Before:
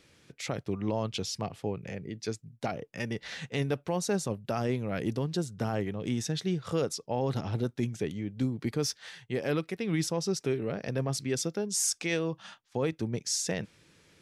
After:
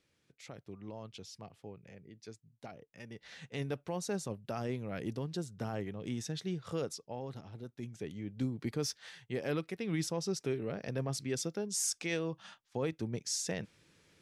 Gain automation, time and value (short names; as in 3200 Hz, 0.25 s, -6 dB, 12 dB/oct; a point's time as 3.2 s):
3.05 s -15 dB
3.64 s -7 dB
6.9 s -7 dB
7.52 s -17 dB
8.32 s -5 dB